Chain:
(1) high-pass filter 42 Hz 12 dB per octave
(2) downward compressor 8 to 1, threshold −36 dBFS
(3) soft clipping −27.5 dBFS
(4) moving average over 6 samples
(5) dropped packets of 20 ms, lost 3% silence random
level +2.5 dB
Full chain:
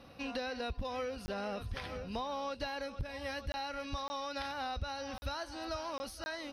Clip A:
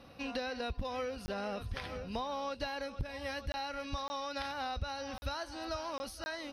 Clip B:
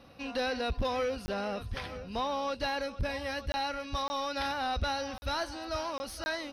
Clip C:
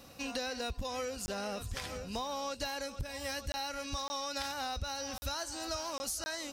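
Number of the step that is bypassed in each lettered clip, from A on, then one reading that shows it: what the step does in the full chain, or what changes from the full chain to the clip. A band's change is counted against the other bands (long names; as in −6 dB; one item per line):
3, distortion level −25 dB
2, average gain reduction 6.0 dB
4, 8 kHz band +13.5 dB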